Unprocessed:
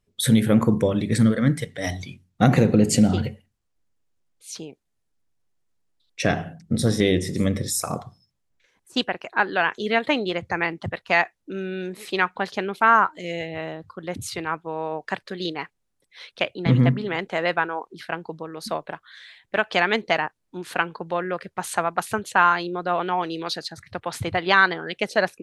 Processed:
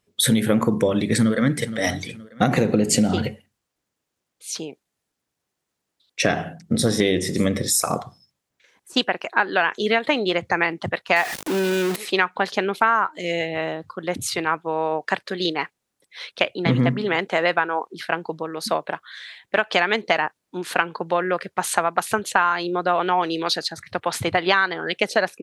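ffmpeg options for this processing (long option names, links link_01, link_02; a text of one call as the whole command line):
ffmpeg -i in.wav -filter_complex "[0:a]asplit=2[link_01][link_02];[link_02]afade=type=in:start_time=1.02:duration=0.01,afade=type=out:start_time=1.68:duration=0.01,aecho=0:1:470|940|1410:0.141254|0.0494388|0.0173036[link_03];[link_01][link_03]amix=inputs=2:normalize=0,asettb=1/sr,asplit=3[link_04][link_05][link_06];[link_04]atrim=end=11.164[link_07];[link_05]atrim=start=11.16:end=11.96,asetpts=PTS-STARTPTS,afade=type=in:duration=0.004:curve=qsin,afade=type=out:start_time=0.796:duration=0.004:curve=qsin,aeval=exprs='val(0)+0.5*0.0473*sgn(val(0))':channel_layout=same[link_08];[link_06]atrim=start=11.956[link_09];[link_07][link_08]acrossfade=duration=0.004:curve1=hsin:curve2=qsin[link_10];[link_10][link_09]acrossfade=duration=0.004:curve1=qsin:curve2=hsin,highpass=frequency=240:poles=1,acompressor=threshold=-21dB:ratio=6,volume=6.5dB" out.wav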